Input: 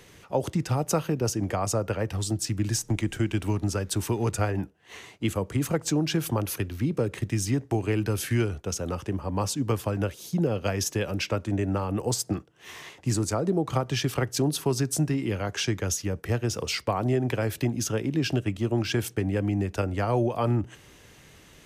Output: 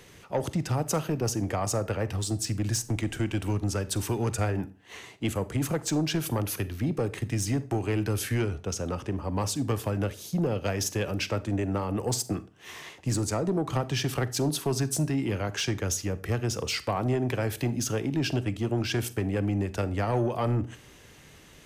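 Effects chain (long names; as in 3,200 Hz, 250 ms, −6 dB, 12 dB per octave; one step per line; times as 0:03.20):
0:08.29–0:09.24: high-shelf EQ 12,000 Hz −10.5 dB
soft clipping −19 dBFS, distortion −17 dB
on a send: convolution reverb RT60 0.40 s, pre-delay 40 ms, DRR 16 dB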